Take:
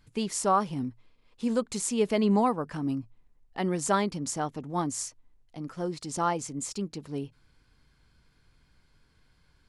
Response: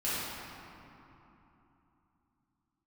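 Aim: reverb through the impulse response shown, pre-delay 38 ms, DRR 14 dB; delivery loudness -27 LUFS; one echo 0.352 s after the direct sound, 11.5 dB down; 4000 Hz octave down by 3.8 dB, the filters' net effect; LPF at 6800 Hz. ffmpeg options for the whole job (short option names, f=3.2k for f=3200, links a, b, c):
-filter_complex "[0:a]lowpass=6.8k,equalizer=f=4k:t=o:g=-4.5,aecho=1:1:352:0.266,asplit=2[a][b];[1:a]atrim=start_sample=2205,adelay=38[c];[b][c]afir=irnorm=-1:irlink=0,volume=-22.5dB[d];[a][d]amix=inputs=2:normalize=0,volume=3dB"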